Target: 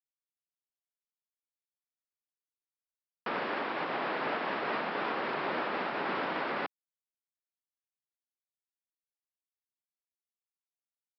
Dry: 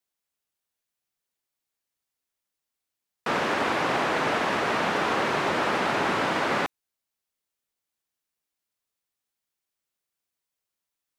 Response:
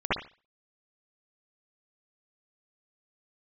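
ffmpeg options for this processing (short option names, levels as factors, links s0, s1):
-af "aresample=11025,aeval=exprs='val(0)*gte(abs(val(0)),0.0266)':c=same,aresample=44100,alimiter=limit=0.119:level=0:latency=1:release=244,highpass=190,lowpass=3300,volume=0.596"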